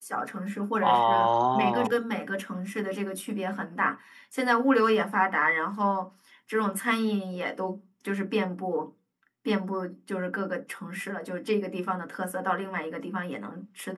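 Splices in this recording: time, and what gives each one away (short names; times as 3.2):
1.87 sound cut off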